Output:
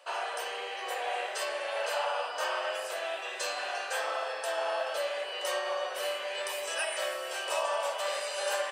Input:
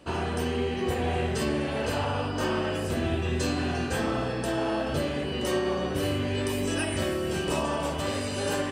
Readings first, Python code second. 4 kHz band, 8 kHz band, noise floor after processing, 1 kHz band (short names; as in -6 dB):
-0.5 dB, -1.0 dB, -39 dBFS, -0.5 dB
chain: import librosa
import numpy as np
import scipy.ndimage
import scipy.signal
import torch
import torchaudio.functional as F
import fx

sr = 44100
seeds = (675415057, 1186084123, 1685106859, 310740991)

y = scipy.signal.sosfilt(scipy.signal.ellip(4, 1.0, 80, 560.0, 'highpass', fs=sr, output='sos'), x)